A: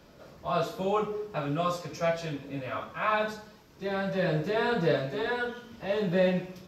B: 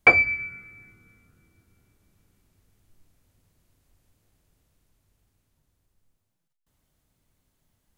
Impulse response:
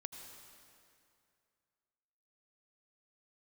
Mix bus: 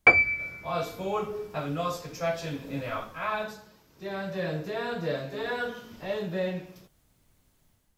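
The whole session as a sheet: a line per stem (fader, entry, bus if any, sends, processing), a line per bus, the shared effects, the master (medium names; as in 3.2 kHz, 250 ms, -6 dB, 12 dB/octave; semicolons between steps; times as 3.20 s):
-2.5 dB, 0.20 s, no send, treble shelf 9 kHz +10.5 dB; gain riding within 5 dB 0.5 s
-2.0 dB, 0.00 s, muted 3.44–5.96 s, no send, level rider gain up to 8 dB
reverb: none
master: none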